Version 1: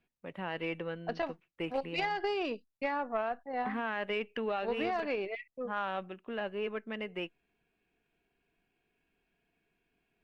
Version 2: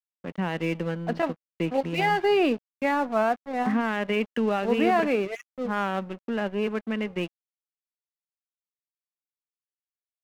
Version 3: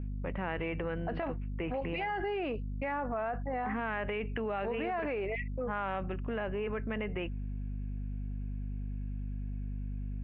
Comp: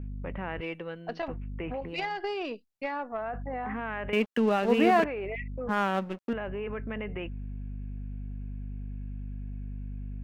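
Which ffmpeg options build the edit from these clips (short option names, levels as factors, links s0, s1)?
-filter_complex "[0:a]asplit=2[s0][s1];[1:a]asplit=2[s2][s3];[2:a]asplit=5[s4][s5][s6][s7][s8];[s4]atrim=end=0.612[s9];[s0]atrim=start=0.608:end=1.282[s10];[s5]atrim=start=1.278:end=1.95[s11];[s1]atrim=start=1.79:end=3.27[s12];[s6]atrim=start=3.11:end=4.132[s13];[s2]atrim=start=4.128:end=5.042[s14];[s7]atrim=start=5.038:end=5.692[s15];[s3]atrim=start=5.688:end=6.332[s16];[s8]atrim=start=6.328[s17];[s9][s10]acrossfade=d=0.004:c1=hsin:c2=hsin[s18];[s18][s11]acrossfade=d=0.004:c1=hsin:c2=hsin[s19];[s19][s12]acrossfade=d=0.16:c1=tri:c2=tri[s20];[s20][s13]acrossfade=d=0.16:c1=tri:c2=tri[s21];[s21][s14]acrossfade=d=0.004:c1=hsin:c2=hsin[s22];[s22][s15]acrossfade=d=0.004:c1=hsin:c2=hsin[s23];[s23][s16]acrossfade=d=0.004:c1=hsin:c2=hsin[s24];[s24][s17]acrossfade=d=0.004:c1=hsin:c2=hsin"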